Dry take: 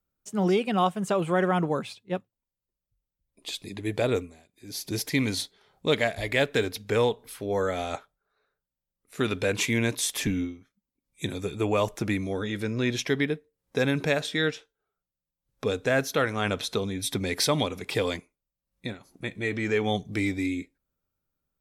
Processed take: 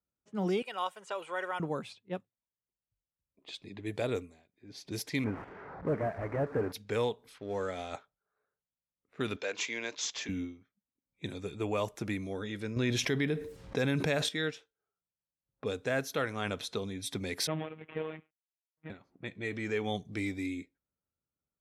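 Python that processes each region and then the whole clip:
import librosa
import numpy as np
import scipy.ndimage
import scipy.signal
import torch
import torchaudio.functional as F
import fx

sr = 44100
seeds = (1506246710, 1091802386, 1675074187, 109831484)

y = fx.chain(x, sr, fx.highpass(hz=720.0, slope=12),
    fx.comb(ms=2.1, depth=0.37), at=(0.62, 1.6))
y = fx.chain(y, sr, fx.delta_mod(bps=16000, step_db=-34.5),
    fx.lowpass(hz=1700.0, slope=24),
    fx.leveller(passes=1), at=(5.24, 6.72))
y = fx.chain(y, sr, fx.law_mismatch(coded='A'),
    fx.lowpass(hz=9700.0, slope=24), at=(7.38, 7.92))
y = fx.chain(y, sr, fx.highpass(hz=480.0, slope=12),
    fx.resample_bad(factor=3, down='none', up='filtered'), at=(9.36, 10.29))
y = fx.chain(y, sr, fx.low_shelf(hz=76.0, db=10.0),
    fx.env_flatten(amount_pct=70), at=(12.76, 14.29))
y = fx.chain(y, sr, fx.cvsd(bps=16000),
    fx.robotise(hz=157.0), at=(17.47, 18.9))
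y = scipy.signal.sosfilt(scipy.signal.butter(2, 60.0, 'highpass', fs=sr, output='sos'), y)
y = fx.env_lowpass(y, sr, base_hz=1500.0, full_db=-25.5)
y = y * 10.0 ** (-7.5 / 20.0)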